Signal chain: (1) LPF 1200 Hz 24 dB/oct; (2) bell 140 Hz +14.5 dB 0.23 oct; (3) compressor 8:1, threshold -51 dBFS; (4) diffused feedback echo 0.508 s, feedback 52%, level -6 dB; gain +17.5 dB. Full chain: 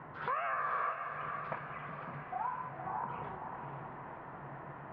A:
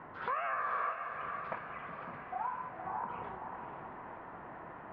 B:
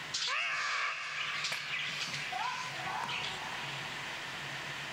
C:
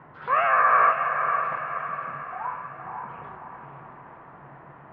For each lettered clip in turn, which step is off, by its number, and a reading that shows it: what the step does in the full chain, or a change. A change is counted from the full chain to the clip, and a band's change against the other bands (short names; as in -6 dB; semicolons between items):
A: 2, 125 Hz band -7.0 dB; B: 1, 2 kHz band +10.5 dB; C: 3, mean gain reduction 2.5 dB